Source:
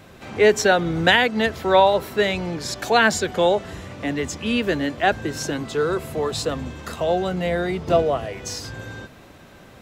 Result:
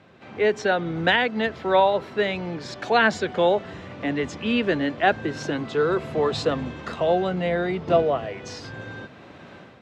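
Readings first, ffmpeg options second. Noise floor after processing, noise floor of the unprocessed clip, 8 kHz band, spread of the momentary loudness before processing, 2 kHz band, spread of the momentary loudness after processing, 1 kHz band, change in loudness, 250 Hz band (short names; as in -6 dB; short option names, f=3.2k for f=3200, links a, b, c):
-46 dBFS, -46 dBFS, -13.0 dB, 14 LU, -3.0 dB, 16 LU, -2.0 dB, -2.5 dB, -1.5 dB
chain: -af "dynaudnorm=f=530:g=3:m=11dB,highpass=110,lowpass=3.7k,volume=-6dB"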